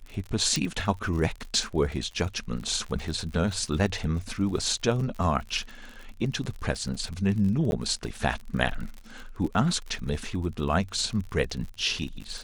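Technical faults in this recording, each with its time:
crackle 52/s -34 dBFS
0.56 pop
7.71–7.72 gap

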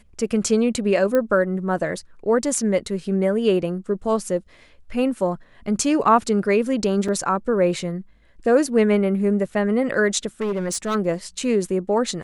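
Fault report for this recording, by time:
1.15 pop -10 dBFS
7.08–7.09 gap 5.2 ms
10.41–10.96 clipped -20 dBFS

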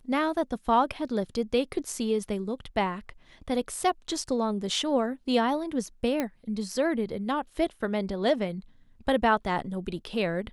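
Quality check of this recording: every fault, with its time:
6.2 pop -14 dBFS

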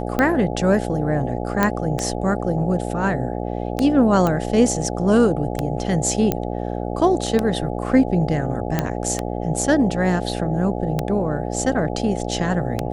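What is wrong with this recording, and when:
buzz 60 Hz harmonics 14 -26 dBFS
tick 33 1/3 rpm -7 dBFS
1.63 pop -4 dBFS
4.27 pop -9 dBFS
6.32 pop -6 dBFS
8.79 pop -6 dBFS

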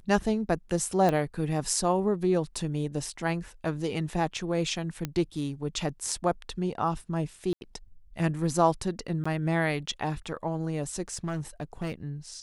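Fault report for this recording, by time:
1.09 pop -14 dBFS
5.05 pop -16 dBFS
7.53–7.61 gap 81 ms
9.24–9.26 gap 15 ms
11.14–11.94 clipped -27 dBFS

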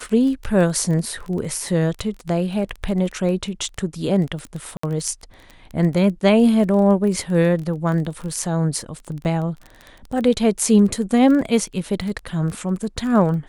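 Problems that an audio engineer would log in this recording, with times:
crackle 17/s -27 dBFS
4.77–4.83 gap 64 ms
9.24–9.25 gap 9.6 ms

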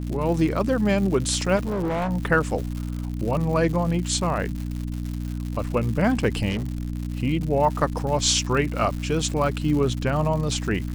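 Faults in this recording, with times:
crackle 190/s -30 dBFS
hum 60 Hz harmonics 5 -29 dBFS
1.56–2.11 clipped -22 dBFS
6.49–6.9 clipped -22 dBFS

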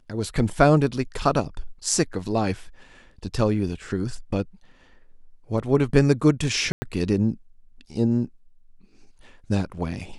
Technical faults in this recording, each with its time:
6.72–6.82 gap 0.1 s

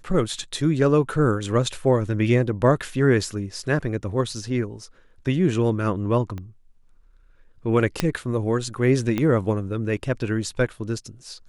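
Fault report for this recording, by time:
6.38 pop -22 dBFS
8 pop -6 dBFS
9.18 pop -12 dBFS

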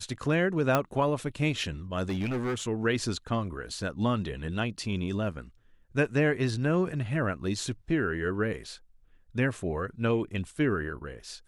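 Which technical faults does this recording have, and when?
0.75 pop -10 dBFS
2.09–2.64 clipped -26.5 dBFS

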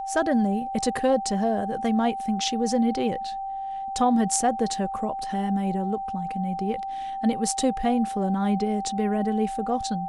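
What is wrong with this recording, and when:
tone 780 Hz -29 dBFS

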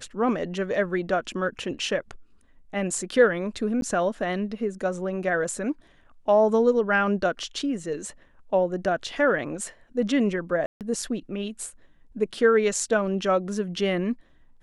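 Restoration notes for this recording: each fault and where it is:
3.81–3.82 gap 12 ms
10.66–10.81 gap 0.148 s

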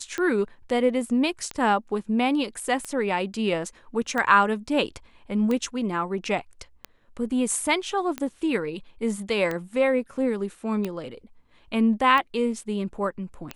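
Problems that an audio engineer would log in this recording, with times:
tick 45 rpm -15 dBFS

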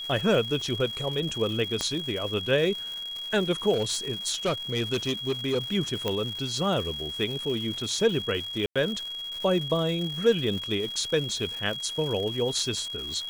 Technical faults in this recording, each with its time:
crackle 320/s -34 dBFS
tone 3300 Hz -33 dBFS
1.81 pop -13 dBFS
3.73–5.59 clipped -21.5 dBFS
6.08 pop -13 dBFS
8.66–8.76 gap 96 ms

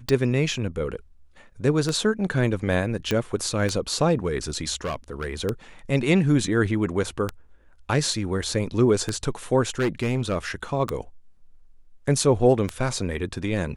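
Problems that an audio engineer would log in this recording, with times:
tick 33 1/3 rpm -11 dBFS
3.11 pop -10 dBFS
4.84–5.27 clipped -24 dBFS
9.7–10.36 clipped -18.5 dBFS

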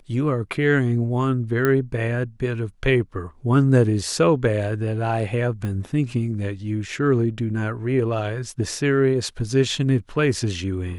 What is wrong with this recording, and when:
1.65 pop -8 dBFS
5.65 pop -18 dBFS

